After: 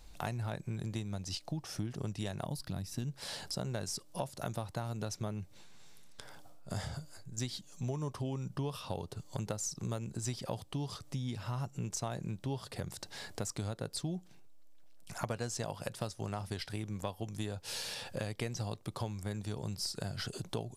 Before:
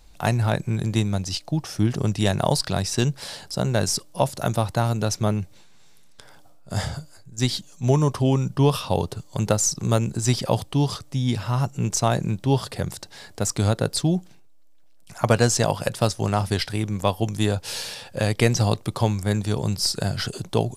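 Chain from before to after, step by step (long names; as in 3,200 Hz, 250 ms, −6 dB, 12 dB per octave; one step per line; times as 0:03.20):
gain on a spectral selection 0:02.46–0:03.08, 340–10,000 Hz −9 dB
downward compressor 4 to 1, threshold −34 dBFS, peak gain reduction 18 dB
level −3 dB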